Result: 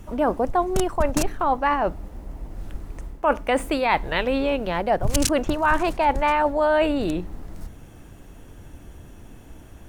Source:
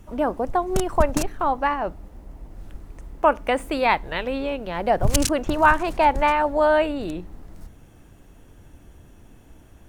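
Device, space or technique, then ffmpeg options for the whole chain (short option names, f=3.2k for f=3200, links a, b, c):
compression on the reversed sound: -af "areverse,acompressor=threshold=-22dB:ratio=5,areverse,volume=5dB"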